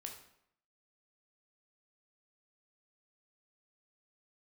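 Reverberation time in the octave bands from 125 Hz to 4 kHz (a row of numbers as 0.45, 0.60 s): 0.75, 0.75, 0.70, 0.70, 0.65, 0.55 s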